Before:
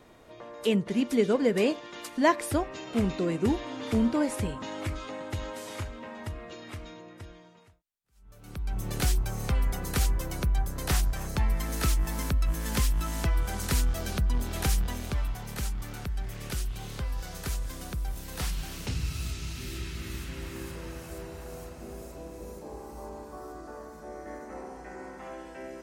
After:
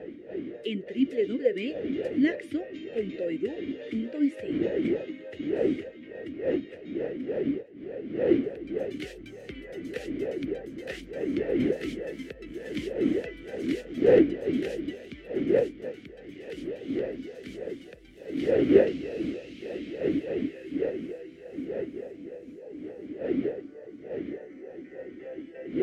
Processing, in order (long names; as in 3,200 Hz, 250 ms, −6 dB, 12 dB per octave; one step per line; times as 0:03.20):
wind on the microphone 390 Hz −26 dBFS
formant filter swept between two vowels e-i 3.4 Hz
level +6.5 dB